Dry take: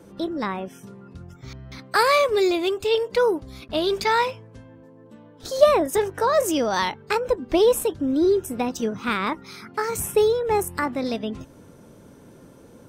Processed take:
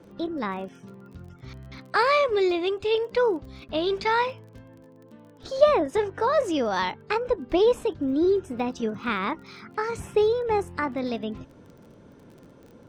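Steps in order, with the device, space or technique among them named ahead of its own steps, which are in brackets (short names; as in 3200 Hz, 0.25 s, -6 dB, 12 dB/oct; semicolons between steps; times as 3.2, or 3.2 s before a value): lo-fi chain (LPF 4200 Hz 12 dB/oct; wow and flutter 17 cents; crackle 29/s -40 dBFS); gain -2.5 dB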